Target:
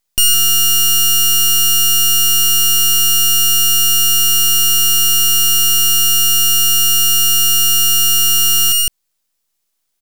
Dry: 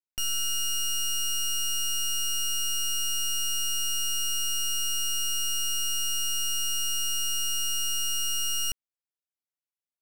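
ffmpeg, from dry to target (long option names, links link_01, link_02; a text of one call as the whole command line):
ffmpeg -i in.wav -af "aecho=1:1:96.21|160.3:0.282|0.562,aexciter=amount=15.8:drive=9.8:freq=2500,aeval=exprs='max(val(0),0)':channel_layout=same,volume=-7.5dB" out.wav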